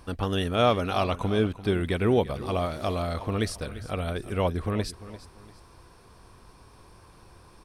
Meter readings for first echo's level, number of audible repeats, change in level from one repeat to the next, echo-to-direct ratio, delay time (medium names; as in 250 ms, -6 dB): -15.5 dB, 2, -9.0 dB, -15.0 dB, 345 ms